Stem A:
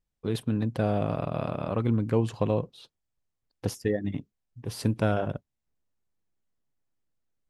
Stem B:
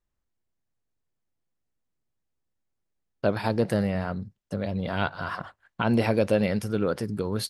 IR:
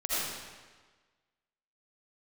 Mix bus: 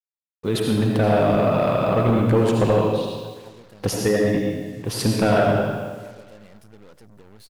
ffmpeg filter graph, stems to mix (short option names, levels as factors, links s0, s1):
-filter_complex "[0:a]lowshelf=f=260:g=-6,dynaudnorm=f=180:g=3:m=1.58,adelay=200,volume=1.41,asplit=2[s0][s1];[s1]volume=0.631[s2];[1:a]acompressor=threshold=0.0355:ratio=3,volume=0.141[s3];[2:a]atrim=start_sample=2205[s4];[s2][s4]afir=irnorm=-1:irlink=0[s5];[s0][s3][s5]amix=inputs=3:normalize=0,asoftclip=type=tanh:threshold=0.316,acrusher=bits=7:mix=0:aa=0.5"